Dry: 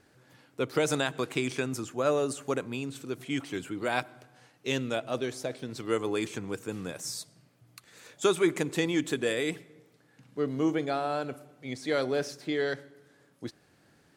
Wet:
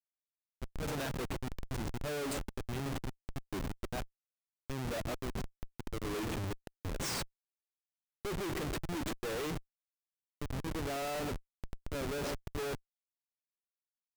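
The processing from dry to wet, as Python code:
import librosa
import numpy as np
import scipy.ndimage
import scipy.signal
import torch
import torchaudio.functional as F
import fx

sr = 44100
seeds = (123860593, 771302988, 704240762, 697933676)

y = fx.echo_banded(x, sr, ms=139, feedback_pct=42, hz=1300.0, wet_db=-17.5)
y = fx.auto_swell(y, sr, attack_ms=370.0)
y = fx.schmitt(y, sr, flips_db=-38.0)
y = y * librosa.db_to_amplitude(1.5)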